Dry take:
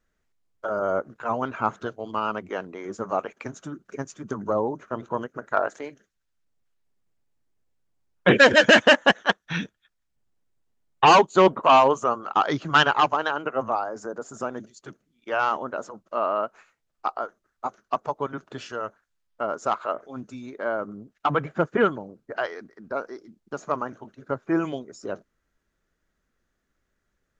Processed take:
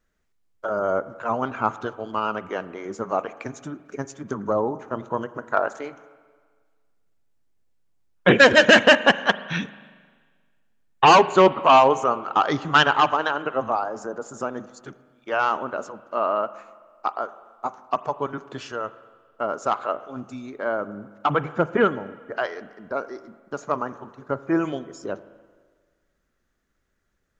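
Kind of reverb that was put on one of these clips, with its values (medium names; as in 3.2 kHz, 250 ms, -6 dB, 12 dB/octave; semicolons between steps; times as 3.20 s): spring tank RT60 1.6 s, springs 39/44 ms, chirp 70 ms, DRR 15 dB; trim +1.5 dB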